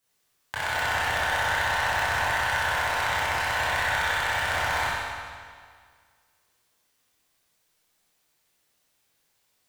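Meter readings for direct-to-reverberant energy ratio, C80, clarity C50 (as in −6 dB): −10.0 dB, −1.0 dB, −4.0 dB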